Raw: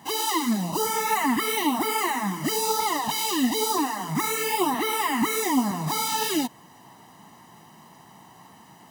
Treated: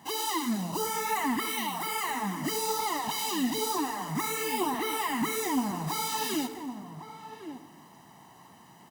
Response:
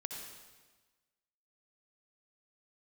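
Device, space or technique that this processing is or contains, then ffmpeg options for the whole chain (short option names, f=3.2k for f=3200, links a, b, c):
saturated reverb return: -filter_complex "[0:a]asettb=1/sr,asplit=3[a][b][c];[a]atrim=end=1.454[d];[b]atrim=start=1.45:end=2.09,asetpts=PTS-STARTPTS,afade=t=in:d=0.004:c=qsin,afade=t=out:st=0.636:d=0.004:c=qsin,highpass=700[e];[c]atrim=start=2.086[f];[d][e]acrossfade=d=0.004:c1=hsin:c2=qsin[g];[g][f]acrossfade=d=0.004:c1=qsin:c2=hsin,asplit=2[h][i];[i]adelay=1108,volume=-11dB,highshelf=f=4k:g=-24.9[j];[h][j]amix=inputs=2:normalize=0,asplit=2[k][l];[1:a]atrim=start_sample=2205[m];[l][m]afir=irnorm=-1:irlink=0,asoftclip=type=tanh:threshold=-27.5dB,volume=-3.5dB[n];[k][n]amix=inputs=2:normalize=0,volume=-7.5dB"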